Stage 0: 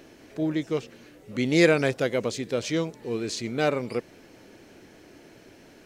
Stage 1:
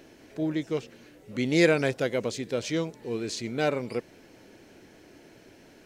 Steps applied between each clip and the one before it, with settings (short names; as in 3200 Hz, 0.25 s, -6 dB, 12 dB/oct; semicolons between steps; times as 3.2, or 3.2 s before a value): notch 1200 Hz, Q 18; gain -2 dB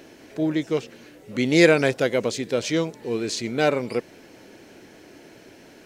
low shelf 100 Hz -7.5 dB; gain +6 dB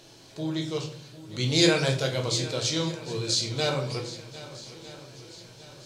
graphic EQ 125/250/500/1000/2000/4000/8000 Hz +9/-7/-3/+5/-7/+12/+7 dB; swung echo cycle 1.255 s, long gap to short 1.5:1, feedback 42%, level -16 dB; shoebox room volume 67 m³, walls mixed, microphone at 0.66 m; gain -8 dB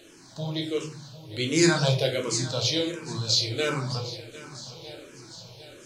endless phaser -1.4 Hz; gain +4 dB